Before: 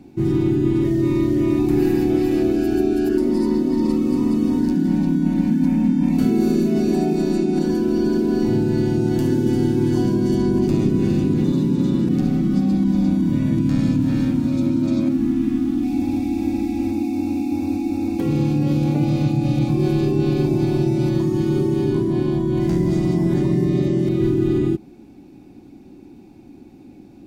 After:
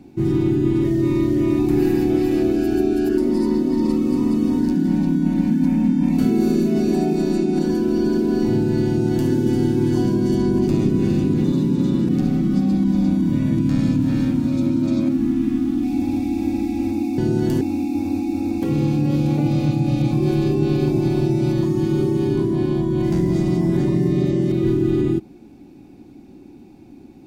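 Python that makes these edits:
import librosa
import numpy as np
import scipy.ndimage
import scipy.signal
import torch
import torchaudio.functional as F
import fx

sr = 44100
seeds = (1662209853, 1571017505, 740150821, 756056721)

y = fx.edit(x, sr, fx.duplicate(start_s=8.87, length_s=0.43, to_s=17.18), tone=tone)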